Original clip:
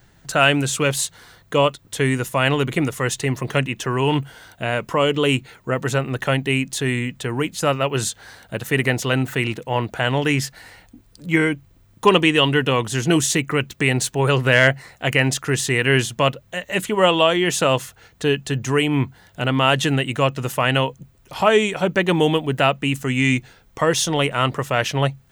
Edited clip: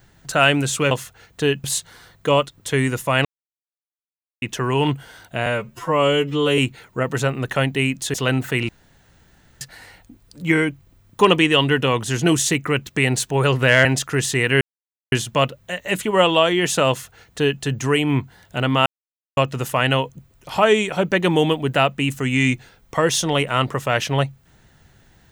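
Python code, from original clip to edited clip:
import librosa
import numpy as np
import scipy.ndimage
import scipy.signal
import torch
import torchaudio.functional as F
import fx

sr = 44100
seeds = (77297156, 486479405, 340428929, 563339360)

y = fx.edit(x, sr, fx.silence(start_s=2.52, length_s=1.17),
    fx.stretch_span(start_s=4.73, length_s=0.56, factor=2.0),
    fx.cut(start_s=6.85, length_s=2.13),
    fx.room_tone_fill(start_s=9.53, length_s=0.92),
    fx.cut(start_s=14.69, length_s=0.51),
    fx.insert_silence(at_s=15.96, length_s=0.51),
    fx.duplicate(start_s=17.73, length_s=0.73, to_s=0.91),
    fx.silence(start_s=19.7, length_s=0.51), tone=tone)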